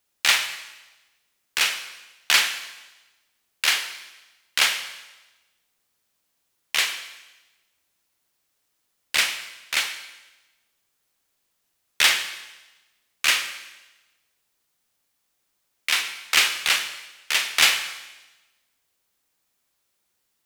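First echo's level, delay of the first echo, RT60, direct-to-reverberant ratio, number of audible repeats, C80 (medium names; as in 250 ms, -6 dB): no echo, no echo, 1.1 s, 8.0 dB, no echo, 11.5 dB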